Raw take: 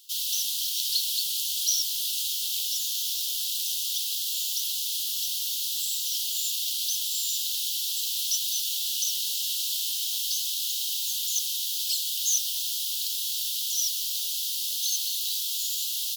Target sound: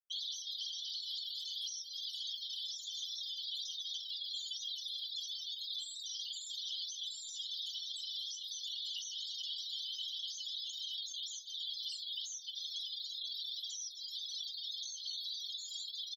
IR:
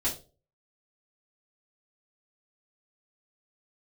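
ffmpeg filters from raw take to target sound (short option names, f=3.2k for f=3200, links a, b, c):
-af "afftfilt=real='re*gte(hypot(re,im),0.0631)':imag='im*gte(hypot(re,im),0.0631)':win_size=1024:overlap=0.75,equalizer=f=10k:t=o:w=2.2:g=-3.5,aecho=1:1:4.6:0.43,adynamicequalizer=threshold=0.00398:dfrequency=3900:dqfactor=1.7:tfrequency=3900:tqfactor=1.7:attack=5:release=100:ratio=0.375:range=4:mode=cutabove:tftype=bell,acompressor=threshold=-39dB:ratio=10,alimiter=level_in=16dB:limit=-24dB:level=0:latency=1:release=31,volume=-16dB,aecho=1:1:19|45:0.282|0.133,adynamicsmooth=sensitivity=1.5:basefreq=3.6k,volume=13.5dB"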